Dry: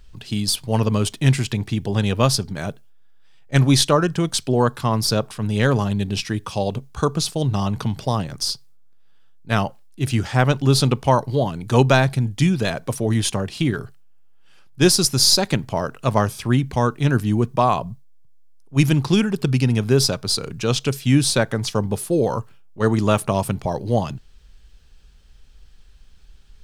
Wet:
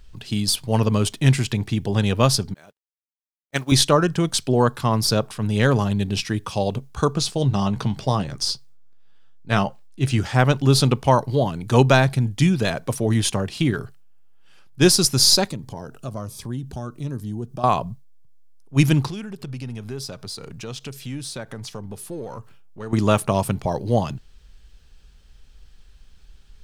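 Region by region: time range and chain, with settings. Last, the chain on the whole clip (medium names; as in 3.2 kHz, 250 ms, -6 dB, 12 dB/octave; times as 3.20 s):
2.54–3.72 s: high-pass 470 Hz 6 dB/octave + word length cut 8-bit, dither none + upward expansion 2.5:1, over -40 dBFS
7.13–10.18 s: peaking EQ 13 kHz -11 dB 0.48 oct + doubling 15 ms -11 dB
15.49–17.64 s: peaking EQ 2.2 kHz -9.5 dB 1.1 oct + compression 2:1, threshold -33 dBFS + Shepard-style phaser falling 1.3 Hz
19.10–22.93 s: partial rectifier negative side -3 dB + compression 2.5:1, threshold -35 dBFS
whole clip: none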